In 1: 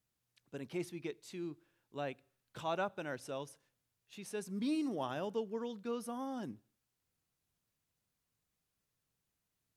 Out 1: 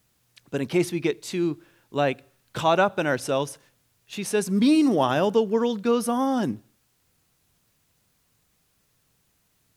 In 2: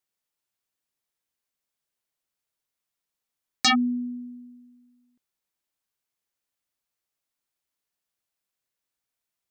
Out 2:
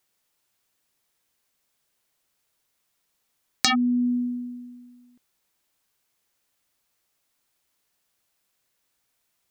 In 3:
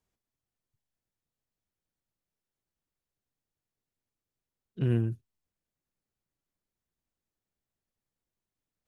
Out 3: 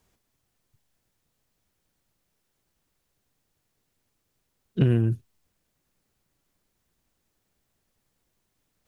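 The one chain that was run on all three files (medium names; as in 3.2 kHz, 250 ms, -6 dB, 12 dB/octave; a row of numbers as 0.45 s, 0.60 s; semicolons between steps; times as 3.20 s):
compression 12:1, threshold -31 dBFS; normalise loudness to -24 LUFS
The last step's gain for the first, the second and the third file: +17.5 dB, +11.5 dB, +14.5 dB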